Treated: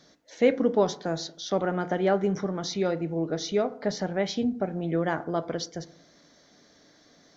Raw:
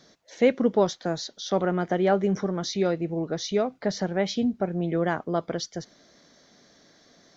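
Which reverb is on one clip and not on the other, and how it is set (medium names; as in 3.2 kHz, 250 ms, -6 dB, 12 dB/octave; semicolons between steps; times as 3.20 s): FDN reverb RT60 0.62 s, low-frequency decay 1.1×, high-frequency decay 0.3×, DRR 11 dB; trim -1.5 dB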